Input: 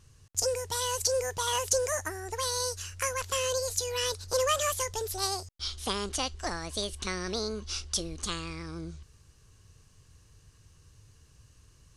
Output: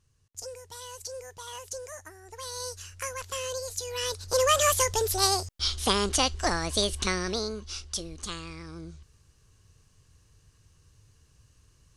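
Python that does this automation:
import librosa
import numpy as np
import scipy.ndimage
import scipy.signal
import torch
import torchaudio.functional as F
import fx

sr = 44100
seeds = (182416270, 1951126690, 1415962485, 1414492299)

y = fx.gain(x, sr, db=fx.line((2.2, -11.5), (2.68, -4.0), (3.76, -4.0), (4.72, 7.0), (7.01, 7.0), (7.7, -2.5)))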